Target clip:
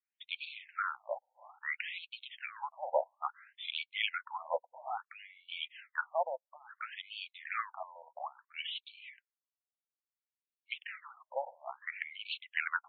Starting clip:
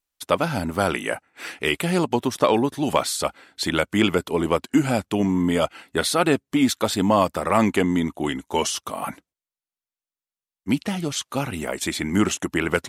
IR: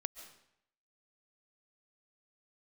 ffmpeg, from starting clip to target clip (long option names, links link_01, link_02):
-af "afftfilt=real='re*between(b*sr/1024,680*pow(3200/680,0.5+0.5*sin(2*PI*0.59*pts/sr))/1.41,680*pow(3200/680,0.5+0.5*sin(2*PI*0.59*pts/sr))*1.41)':imag='im*between(b*sr/1024,680*pow(3200/680,0.5+0.5*sin(2*PI*0.59*pts/sr))/1.41,680*pow(3200/680,0.5+0.5*sin(2*PI*0.59*pts/sr))*1.41)':win_size=1024:overlap=0.75,volume=-6.5dB"